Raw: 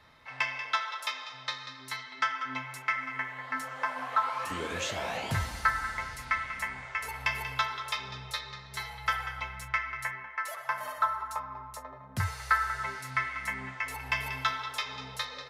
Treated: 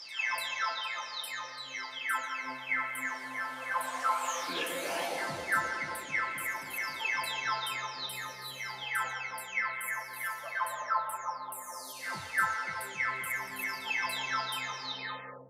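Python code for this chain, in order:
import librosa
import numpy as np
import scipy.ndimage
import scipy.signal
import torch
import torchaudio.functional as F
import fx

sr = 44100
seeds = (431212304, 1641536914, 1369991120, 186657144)

p1 = fx.spec_delay(x, sr, highs='early', ms=644)
p2 = scipy.signal.sosfilt(scipy.signal.butter(2, 290.0, 'highpass', fs=sr, output='sos'), p1)
p3 = fx.high_shelf(p2, sr, hz=8000.0, db=6.5)
p4 = p3 + fx.echo_bbd(p3, sr, ms=265, stages=1024, feedback_pct=78, wet_db=-4.0, dry=0)
y = p4 * 10.0 ** (1.0 / 20.0)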